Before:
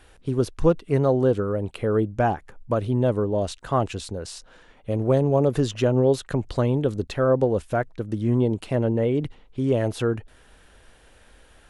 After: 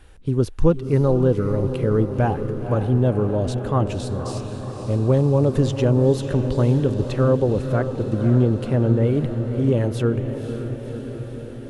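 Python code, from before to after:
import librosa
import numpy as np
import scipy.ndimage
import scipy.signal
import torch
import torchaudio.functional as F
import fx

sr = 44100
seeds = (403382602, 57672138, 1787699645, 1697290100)

y = fx.low_shelf(x, sr, hz=250.0, db=8.5)
y = fx.notch(y, sr, hz=680.0, q=12.0)
y = fx.echo_diffused(y, sr, ms=523, feedback_pct=69, wet_db=-9.0)
y = fx.doppler_dist(y, sr, depth_ms=0.11, at=(6.66, 9.03))
y = F.gain(torch.from_numpy(y), -1.5).numpy()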